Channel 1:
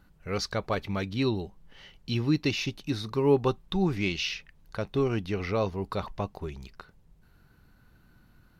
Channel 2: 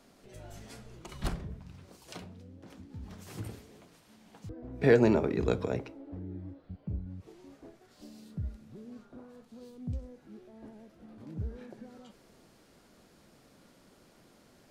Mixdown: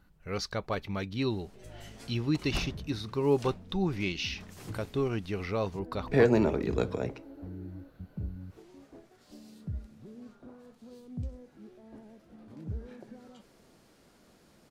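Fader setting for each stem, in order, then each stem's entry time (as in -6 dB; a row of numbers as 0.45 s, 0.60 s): -3.5 dB, -0.5 dB; 0.00 s, 1.30 s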